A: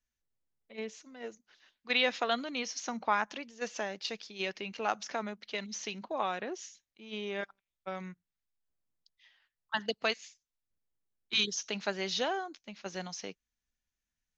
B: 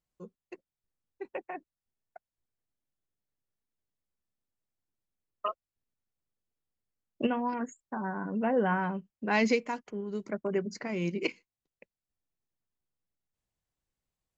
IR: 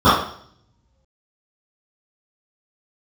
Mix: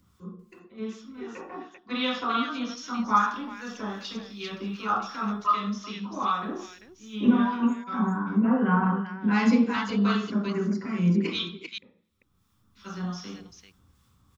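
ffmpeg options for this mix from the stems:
-filter_complex "[0:a]volume=0.668,asplit=3[s0][s1][s2];[s0]atrim=end=11.39,asetpts=PTS-STARTPTS,afade=t=out:st=11.386:d=0.004:c=hsin[s3];[s1]atrim=start=11.39:end=12.75,asetpts=PTS-STARTPTS,volume=0[s4];[s2]atrim=start=12.75,asetpts=PTS-STARTPTS,afade=t=in:d=0.004:c=hsin[s5];[s3][s4][s5]concat=n=3:v=0:a=1,asplit=3[s6][s7][s8];[s7]volume=0.178[s9];[s8]volume=0.668[s10];[1:a]acompressor=mode=upward:threshold=0.00316:ratio=2.5,volume=0.944,asplit=3[s11][s12][s13];[s12]volume=0.112[s14];[s13]volume=0.631[s15];[2:a]atrim=start_sample=2205[s16];[s9][s14]amix=inputs=2:normalize=0[s17];[s17][s16]afir=irnorm=-1:irlink=0[s18];[s10][s15]amix=inputs=2:normalize=0,aecho=0:1:394:1[s19];[s6][s11][s18][s19]amix=inputs=4:normalize=0,equalizer=f=600:t=o:w=1.1:g=-14.5,acrossover=split=1100[s20][s21];[s20]aeval=exprs='val(0)*(1-0.5/2+0.5/2*cos(2*PI*2.6*n/s))':c=same[s22];[s21]aeval=exprs='val(0)*(1-0.5/2-0.5/2*cos(2*PI*2.6*n/s))':c=same[s23];[s22][s23]amix=inputs=2:normalize=0"

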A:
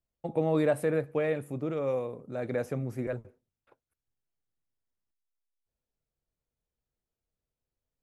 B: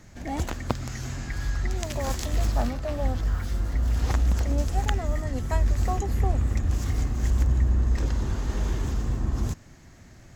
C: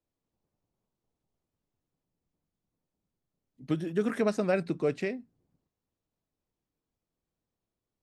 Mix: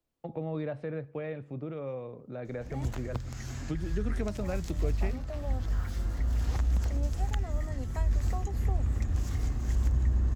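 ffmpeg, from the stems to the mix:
-filter_complex "[0:a]lowpass=f=4800:w=0.5412,lowpass=f=4800:w=1.3066,volume=1.06[s0];[1:a]adelay=2450,volume=0.596[s1];[2:a]volume=1.19[s2];[s0][s1][s2]amix=inputs=3:normalize=0,acrossover=split=150[s3][s4];[s4]acompressor=threshold=0.00794:ratio=2[s5];[s3][s5]amix=inputs=2:normalize=0"

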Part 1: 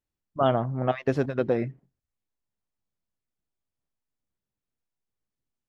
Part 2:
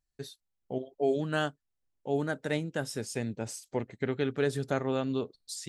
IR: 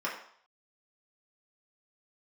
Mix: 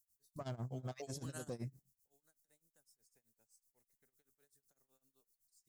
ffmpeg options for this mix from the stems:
-filter_complex "[0:a]bass=f=250:g=11,treble=f=4000:g=14,asoftclip=type=tanh:threshold=0.188,volume=0.178,asplit=2[s0][s1];[1:a]acrossover=split=580|2200|7300[s2][s3][s4][s5];[s2]acompressor=threshold=0.00562:ratio=4[s6];[s3]acompressor=threshold=0.00708:ratio=4[s7];[s4]acompressor=threshold=0.00178:ratio=4[s8];[s5]acompressor=threshold=0.00141:ratio=4[s9];[s6][s7][s8][s9]amix=inputs=4:normalize=0,volume=0.708[s10];[s1]apad=whole_len=250911[s11];[s10][s11]sidechaingate=range=0.0224:threshold=0.00158:ratio=16:detection=peak[s12];[s0][s12]amix=inputs=2:normalize=0,tremolo=f=7.9:d=0.93,aexciter=amount=8.6:drive=4.5:freq=4600,alimiter=level_in=3.76:limit=0.0631:level=0:latency=1:release=72,volume=0.266"

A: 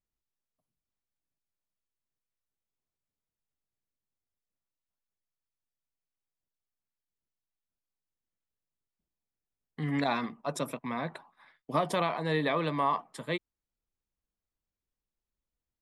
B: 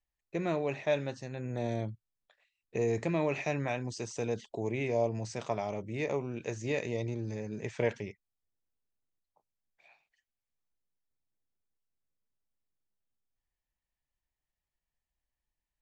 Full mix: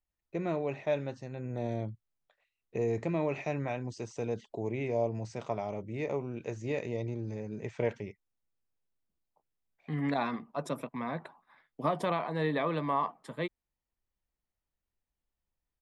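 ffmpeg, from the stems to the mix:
-filter_complex "[0:a]adelay=100,volume=0.891[s0];[1:a]bandreject=f=1700:w=16,volume=0.944[s1];[s0][s1]amix=inputs=2:normalize=0,highshelf=f=2800:g=-9"

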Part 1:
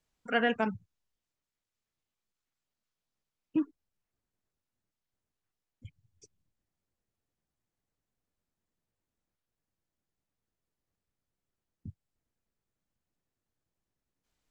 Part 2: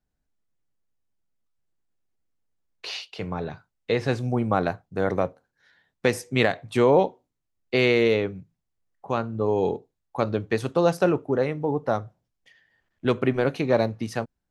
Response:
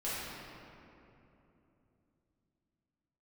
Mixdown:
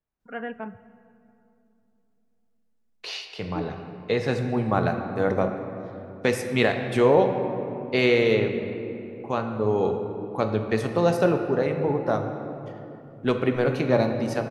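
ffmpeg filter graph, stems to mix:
-filter_complex "[0:a]lowpass=1800,volume=0.501,asplit=2[s0][s1];[s1]volume=0.1[s2];[1:a]adelay=200,volume=0.75,asplit=2[s3][s4];[s4]volume=0.376[s5];[2:a]atrim=start_sample=2205[s6];[s2][s5]amix=inputs=2:normalize=0[s7];[s7][s6]afir=irnorm=-1:irlink=0[s8];[s0][s3][s8]amix=inputs=3:normalize=0"

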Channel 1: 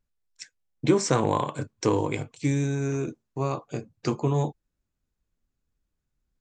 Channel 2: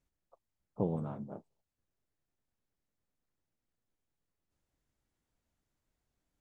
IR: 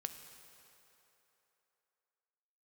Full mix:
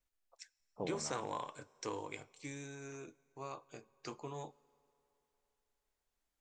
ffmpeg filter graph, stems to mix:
-filter_complex "[0:a]volume=0.224,asplit=2[s0][s1];[s1]volume=0.237[s2];[1:a]volume=0.944[s3];[2:a]atrim=start_sample=2205[s4];[s2][s4]afir=irnorm=-1:irlink=0[s5];[s0][s3][s5]amix=inputs=3:normalize=0,equalizer=f=130:w=0.35:g=-14"

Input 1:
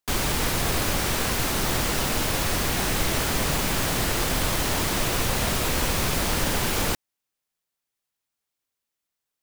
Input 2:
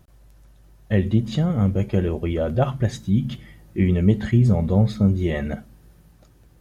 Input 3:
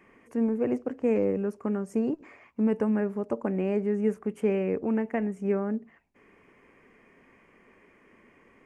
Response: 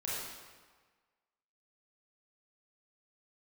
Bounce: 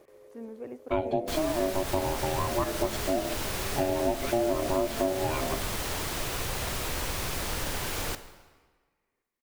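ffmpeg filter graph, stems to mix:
-filter_complex "[0:a]adelay=1200,volume=0.376,asplit=2[s0][s1];[s1]volume=0.211[s2];[1:a]aeval=exprs='val(0)*sin(2*PI*470*n/s)':c=same,volume=1[s3];[2:a]volume=0.251,asplit=2[s4][s5];[s5]volume=0.237[s6];[3:a]atrim=start_sample=2205[s7];[s2][s7]afir=irnorm=-1:irlink=0[s8];[s6]aecho=0:1:568|1136|1704|2272|2840:1|0.38|0.144|0.0549|0.0209[s9];[s0][s3][s4][s8][s9]amix=inputs=5:normalize=0,equalizer=f=210:t=o:w=0.7:g=-6,acompressor=threshold=0.0562:ratio=3"

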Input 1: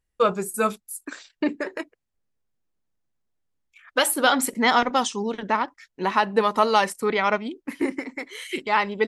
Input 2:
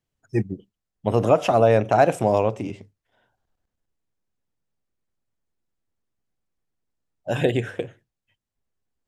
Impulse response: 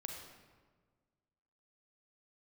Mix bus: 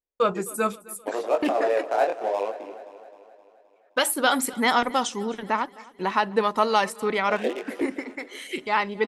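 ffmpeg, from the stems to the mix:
-filter_complex "[0:a]agate=range=0.0891:threshold=0.00631:ratio=16:detection=peak,volume=0.794,asplit=2[s0][s1];[s1]volume=0.0794[s2];[1:a]adynamicsmooth=sensitivity=4:basefreq=920,flanger=delay=19.5:depth=6.6:speed=0.78,highpass=f=380:w=0.5412,highpass=f=380:w=1.3066,volume=0.75,asplit=2[s3][s4];[s4]volume=0.188[s5];[s2][s5]amix=inputs=2:normalize=0,aecho=0:1:261|522|783|1044|1305|1566|1827|2088:1|0.56|0.314|0.176|0.0983|0.0551|0.0308|0.0173[s6];[s0][s3][s6]amix=inputs=3:normalize=0"

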